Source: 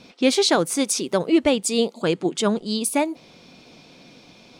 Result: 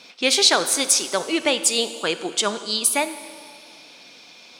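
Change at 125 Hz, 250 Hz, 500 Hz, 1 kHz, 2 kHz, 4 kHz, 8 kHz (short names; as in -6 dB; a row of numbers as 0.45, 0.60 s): -12.0, -8.0, -3.5, +1.0, +5.0, +6.0, +6.5 dB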